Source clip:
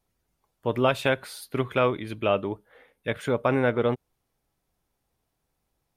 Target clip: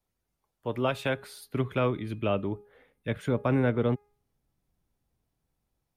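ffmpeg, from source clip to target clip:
-filter_complex "[0:a]bandreject=f=412.4:t=h:w=4,bandreject=f=824.8:t=h:w=4,bandreject=f=1237.2:t=h:w=4,bandreject=f=1649.6:t=h:w=4,bandreject=f=2062:t=h:w=4,bandreject=f=2474.4:t=h:w=4,acrossover=split=290|500|3600[s0][s1][s2][s3];[s0]dynaudnorm=f=540:g=5:m=2.82[s4];[s4][s1][s2][s3]amix=inputs=4:normalize=0,volume=0.501"

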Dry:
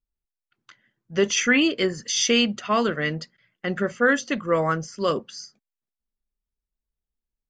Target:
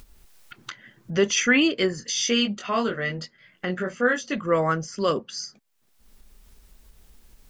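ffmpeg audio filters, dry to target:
-filter_complex "[0:a]asplit=3[s0][s1][s2];[s0]afade=t=out:st=2:d=0.02[s3];[s1]flanger=delay=20:depth=2.2:speed=1.2,afade=t=in:st=2:d=0.02,afade=t=out:st=4.34:d=0.02[s4];[s2]afade=t=in:st=4.34:d=0.02[s5];[s3][s4][s5]amix=inputs=3:normalize=0,acompressor=mode=upward:threshold=0.0631:ratio=2.5"

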